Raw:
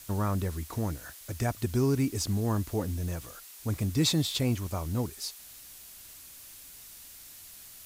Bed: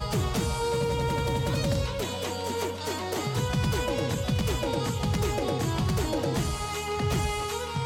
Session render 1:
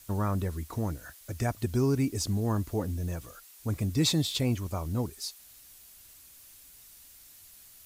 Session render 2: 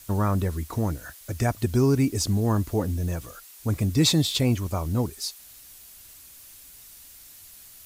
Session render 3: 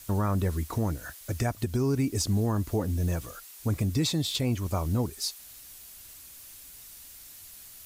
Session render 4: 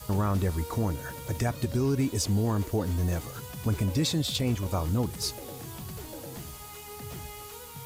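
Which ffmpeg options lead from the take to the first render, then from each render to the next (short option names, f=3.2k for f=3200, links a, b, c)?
-af "afftdn=nr=6:nf=-49"
-af "volume=5.5dB"
-af "alimiter=limit=-18.5dB:level=0:latency=1:release=221"
-filter_complex "[1:a]volume=-14dB[a];[0:a][a]amix=inputs=2:normalize=0"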